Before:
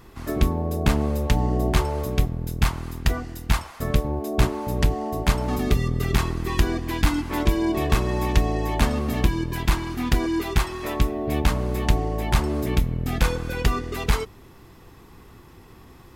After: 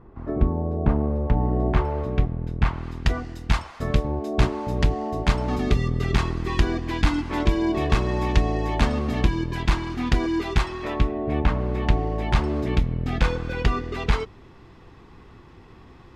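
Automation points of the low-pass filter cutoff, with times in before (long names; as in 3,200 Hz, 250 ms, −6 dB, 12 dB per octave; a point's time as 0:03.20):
0:01.17 1,000 Hz
0:01.91 2,200 Hz
0:02.62 2,200 Hz
0:03.08 5,400 Hz
0:10.61 5,400 Hz
0:11.37 2,200 Hz
0:12.29 4,200 Hz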